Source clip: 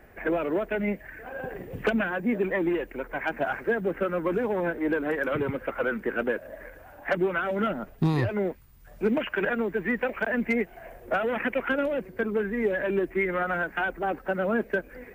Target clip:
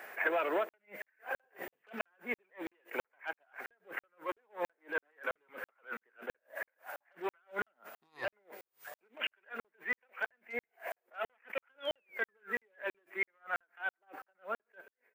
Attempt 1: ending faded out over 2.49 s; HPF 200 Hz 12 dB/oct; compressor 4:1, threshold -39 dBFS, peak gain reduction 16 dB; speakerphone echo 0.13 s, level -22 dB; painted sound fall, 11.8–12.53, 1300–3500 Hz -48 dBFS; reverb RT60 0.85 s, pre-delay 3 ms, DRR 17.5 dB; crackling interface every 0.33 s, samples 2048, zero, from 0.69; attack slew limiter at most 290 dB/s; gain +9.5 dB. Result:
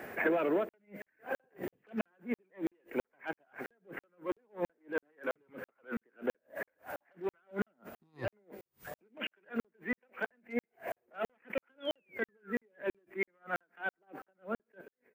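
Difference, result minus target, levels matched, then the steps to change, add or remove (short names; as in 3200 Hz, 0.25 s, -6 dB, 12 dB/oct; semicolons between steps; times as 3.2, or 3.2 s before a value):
250 Hz band +9.5 dB
change: HPF 780 Hz 12 dB/oct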